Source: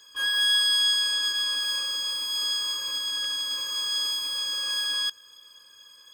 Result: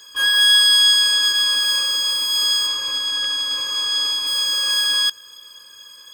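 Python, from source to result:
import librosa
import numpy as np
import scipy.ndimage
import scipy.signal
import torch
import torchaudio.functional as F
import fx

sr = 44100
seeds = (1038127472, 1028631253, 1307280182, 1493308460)

y = fx.high_shelf(x, sr, hz=8300.0, db=fx.steps((0.0, 3.0), (2.66, -10.0), (4.26, 3.5)))
y = F.gain(torch.from_numpy(y), 8.5).numpy()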